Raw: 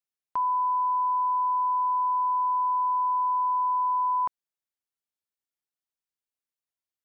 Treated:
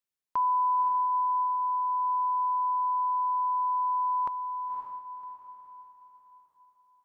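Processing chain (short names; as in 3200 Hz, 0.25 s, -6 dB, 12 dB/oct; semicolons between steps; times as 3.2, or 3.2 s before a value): notch 720 Hz, Q 12; on a send: diffused feedback echo 0.552 s, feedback 42%, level -6.5 dB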